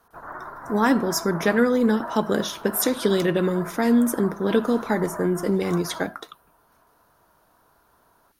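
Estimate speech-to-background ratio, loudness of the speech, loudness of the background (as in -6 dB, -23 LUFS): 15.0 dB, -22.5 LUFS, -37.5 LUFS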